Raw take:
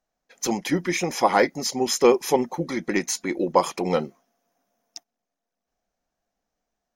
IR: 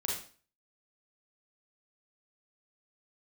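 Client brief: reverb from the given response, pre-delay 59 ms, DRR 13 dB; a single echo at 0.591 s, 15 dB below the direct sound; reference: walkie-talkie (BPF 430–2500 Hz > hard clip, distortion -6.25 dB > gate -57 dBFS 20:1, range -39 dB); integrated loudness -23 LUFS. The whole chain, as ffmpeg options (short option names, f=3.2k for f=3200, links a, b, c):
-filter_complex "[0:a]aecho=1:1:591:0.178,asplit=2[a][b];[1:a]atrim=start_sample=2205,adelay=59[c];[b][c]afir=irnorm=-1:irlink=0,volume=-17dB[d];[a][d]amix=inputs=2:normalize=0,highpass=430,lowpass=2.5k,asoftclip=type=hard:threshold=-21dB,agate=range=-39dB:threshold=-57dB:ratio=20,volume=6.5dB"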